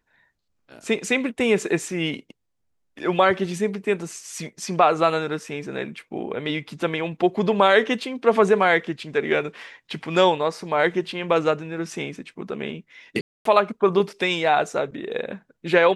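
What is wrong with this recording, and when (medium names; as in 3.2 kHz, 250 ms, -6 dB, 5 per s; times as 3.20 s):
13.21–13.45 s: dropout 243 ms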